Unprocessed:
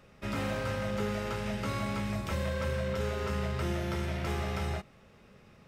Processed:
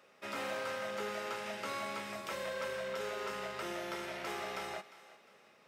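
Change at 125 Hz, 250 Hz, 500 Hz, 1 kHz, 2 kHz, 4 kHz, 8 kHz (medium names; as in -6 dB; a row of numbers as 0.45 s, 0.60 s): -24.0 dB, -12.5 dB, -4.5 dB, -2.0 dB, -2.0 dB, -2.0 dB, -2.0 dB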